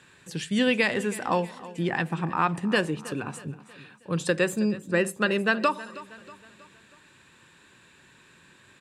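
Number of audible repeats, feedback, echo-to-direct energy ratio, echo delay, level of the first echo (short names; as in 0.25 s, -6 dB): 3, 48%, -16.5 dB, 0.319 s, -17.5 dB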